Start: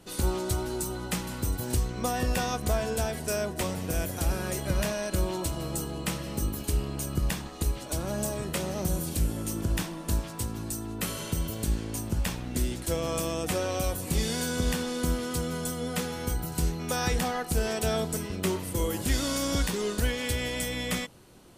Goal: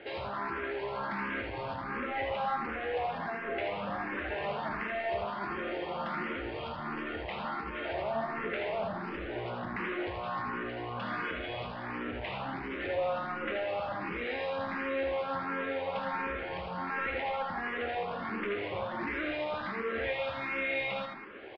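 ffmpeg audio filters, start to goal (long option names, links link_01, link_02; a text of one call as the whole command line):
ffmpeg -i in.wav -filter_complex "[0:a]lowshelf=frequency=160:gain=-8,acompressor=threshold=-33dB:ratio=6,asetrate=48091,aresample=44100,atempo=0.917004,aresample=11025,asoftclip=type=hard:threshold=-39.5dB,aresample=44100,asplit=2[link_01][link_02];[link_02]highpass=frequency=720:poles=1,volume=20dB,asoftclip=type=tanh:threshold=-23dB[link_03];[link_01][link_03]amix=inputs=2:normalize=0,lowpass=frequency=1300:poles=1,volume=-6dB,lowpass=frequency=2300:width_type=q:width=2,aecho=1:1:76|85|189:0.501|0.473|0.211,asplit=2[link_04][link_05];[link_05]afreqshift=1.4[link_06];[link_04][link_06]amix=inputs=2:normalize=1,volume=1.5dB" out.wav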